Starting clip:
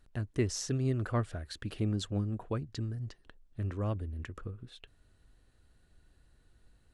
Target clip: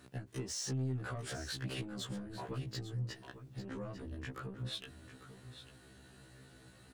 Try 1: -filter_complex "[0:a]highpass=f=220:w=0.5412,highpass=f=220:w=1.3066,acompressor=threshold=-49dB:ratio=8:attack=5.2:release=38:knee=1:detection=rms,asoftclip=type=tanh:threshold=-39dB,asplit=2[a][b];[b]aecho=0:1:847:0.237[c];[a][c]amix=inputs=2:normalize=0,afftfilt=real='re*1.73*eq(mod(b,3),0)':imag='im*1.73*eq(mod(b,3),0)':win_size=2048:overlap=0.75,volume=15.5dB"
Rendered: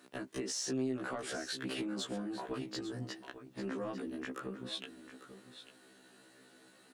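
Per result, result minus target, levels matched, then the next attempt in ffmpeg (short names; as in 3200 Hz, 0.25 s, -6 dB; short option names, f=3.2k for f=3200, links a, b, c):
125 Hz band -11.0 dB; soft clip: distortion -10 dB
-filter_complex "[0:a]highpass=f=94:w=0.5412,highpass=f=94:w=1.3066,acompressor=threshold=-49dB:ratio=8:attack=5.2:release=38:knee=1:detection=rms,asoftclip=type=tanh:threshold=-39dB,asplit=2[a][b];[b]aecho=0:1:847:0.237[c];[a][c]amix=inputs=2:normalize=0,afftfilt=real='re*1.73*eq(mod(b,3),0)':imag='im*1.73*eq(mod(b,3),0)':win_size=2048:overlap=0.75,volume=15.5dB"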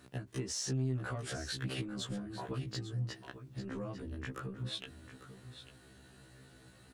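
soft clip: distortion -11 dB
-filter_complex "[0:a]highpass=f=94:w=0.5412,highpass=f=94:w=1.3066,acompressor=threshold=-49dB:ratio=8:attack=5.2:release=38:knee=1:detection=rms,asoftclip=type=tanh:threshold=-47.5dB,asplit=2[a][b];[b]aecho=0:1:847:0.237[c];[a][c]amix=inputs=2:normalize=0,afftfilt=real='re*1.73*eq(mod(b,3),0)':imag='im*1.73*eq(mod(b,3),0)':win_size=2048:overlap=0.75,volume=15.5dB"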